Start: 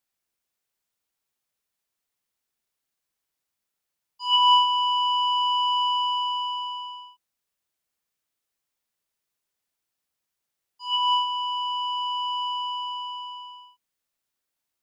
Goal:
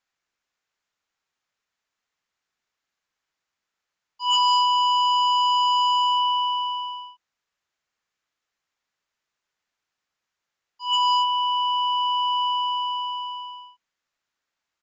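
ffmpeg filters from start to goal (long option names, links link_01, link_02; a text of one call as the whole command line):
ffmpeg -i in.wav -af "aresample=16000,asoftclip=type=hard:threshold=-21dB,aresample=44100,equalizer=frequency=1500:width=0.69:gain=7.5" out.wav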